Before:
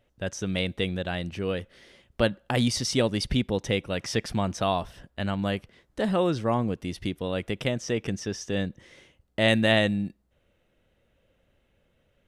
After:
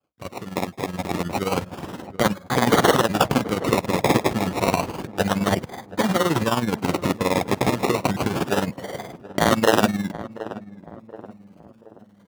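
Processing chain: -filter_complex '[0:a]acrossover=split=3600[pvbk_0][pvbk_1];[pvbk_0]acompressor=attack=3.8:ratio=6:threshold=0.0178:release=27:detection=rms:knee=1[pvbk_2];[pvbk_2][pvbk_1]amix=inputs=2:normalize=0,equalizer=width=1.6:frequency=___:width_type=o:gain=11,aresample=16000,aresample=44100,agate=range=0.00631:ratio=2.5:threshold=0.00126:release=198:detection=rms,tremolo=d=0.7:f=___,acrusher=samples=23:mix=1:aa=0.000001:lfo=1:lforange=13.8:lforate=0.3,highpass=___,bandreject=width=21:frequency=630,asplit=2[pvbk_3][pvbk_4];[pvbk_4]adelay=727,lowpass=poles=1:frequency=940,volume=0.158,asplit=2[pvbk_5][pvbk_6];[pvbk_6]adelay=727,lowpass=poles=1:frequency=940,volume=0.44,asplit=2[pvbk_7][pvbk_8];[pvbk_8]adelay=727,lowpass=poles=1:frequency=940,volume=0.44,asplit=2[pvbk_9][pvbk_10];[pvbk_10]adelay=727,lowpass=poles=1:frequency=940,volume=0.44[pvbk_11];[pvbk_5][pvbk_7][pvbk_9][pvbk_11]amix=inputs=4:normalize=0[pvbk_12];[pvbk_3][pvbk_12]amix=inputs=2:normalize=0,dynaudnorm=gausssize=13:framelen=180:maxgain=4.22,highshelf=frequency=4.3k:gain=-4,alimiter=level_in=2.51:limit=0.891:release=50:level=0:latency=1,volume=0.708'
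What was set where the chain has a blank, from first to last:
2.2k, 19, 120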